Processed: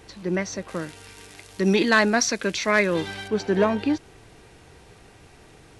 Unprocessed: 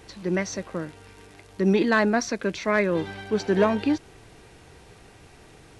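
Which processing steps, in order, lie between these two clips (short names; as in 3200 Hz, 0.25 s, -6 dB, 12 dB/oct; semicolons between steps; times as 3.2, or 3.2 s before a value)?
0.68–3.28 high shelf 2100 Hz +11 dB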